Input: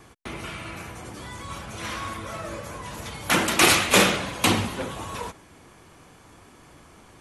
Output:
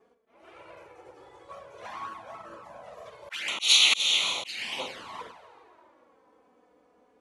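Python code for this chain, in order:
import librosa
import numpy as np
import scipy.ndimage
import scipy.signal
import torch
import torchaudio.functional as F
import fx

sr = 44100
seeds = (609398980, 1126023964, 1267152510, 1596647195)

y = fx.room_early_taps(x, sr, ms=(16, 45), db=(-12.5, -10.0))
y = fx.auto_wah(y, sr, base_hz=450.0, top_hz=4000.0, q=2.1, full_db=-15.0, direction='up')
y = fx.high_shelf(y, sr, hz=2200.0, db=10.0)
y = fx.rev_plate(y, sr, seeds[0], rt60_s=3.4, hf_ratio=0.5, predelay_ms=90, drr_db=8.0)
y = fx.auto_swell(y, sr, attack_ms=335.0)
y = fx.env_flanger(y, sr, rest_ms=4.9, full_db=-30.0)
y = fx.upward_expand(y, sr, threshold_db=-50.0, expansion=1.5)
y = y * librosa.db_to_amplitude(8.5)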